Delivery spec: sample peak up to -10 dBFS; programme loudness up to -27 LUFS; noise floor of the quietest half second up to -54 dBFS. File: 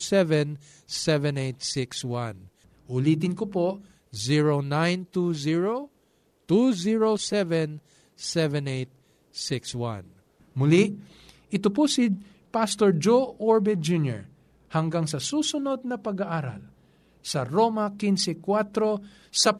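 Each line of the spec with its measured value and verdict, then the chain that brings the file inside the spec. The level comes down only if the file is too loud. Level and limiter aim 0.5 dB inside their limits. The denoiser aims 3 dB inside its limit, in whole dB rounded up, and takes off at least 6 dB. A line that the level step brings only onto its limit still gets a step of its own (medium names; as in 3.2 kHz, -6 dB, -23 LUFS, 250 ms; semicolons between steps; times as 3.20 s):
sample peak -8.5 dBFS: fail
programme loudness -25.5 LUFS: fail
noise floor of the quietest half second -66 dBFS: pass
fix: trim -2 dB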